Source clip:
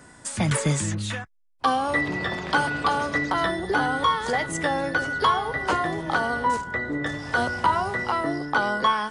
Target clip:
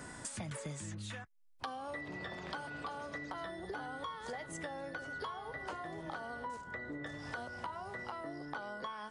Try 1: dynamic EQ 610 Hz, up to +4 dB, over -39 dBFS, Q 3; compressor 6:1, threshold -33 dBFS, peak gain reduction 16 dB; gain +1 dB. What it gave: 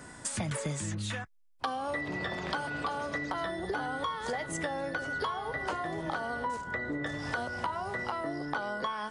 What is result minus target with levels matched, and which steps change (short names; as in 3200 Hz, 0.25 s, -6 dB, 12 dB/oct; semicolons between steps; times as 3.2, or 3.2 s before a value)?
compressor: peak gain reduction -8.5 dB
change: compressor 6:1, threshold -43.5 dBFS, peak gain reduction 25 dB